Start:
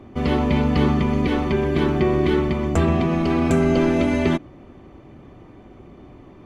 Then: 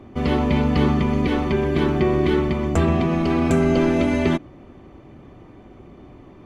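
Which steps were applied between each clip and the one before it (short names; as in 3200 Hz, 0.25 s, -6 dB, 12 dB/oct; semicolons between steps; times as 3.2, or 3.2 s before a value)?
nothing audible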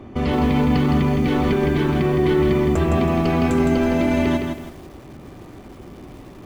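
limiter -16 dBFS, peak gain reduction 9 dB; lo-fi delay 0.162 s, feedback 35%, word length 8-bit, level -5 dB; gain +4 dB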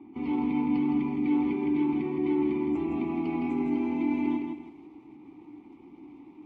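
vowel filter u; AAC 32 kbps 32000 Hz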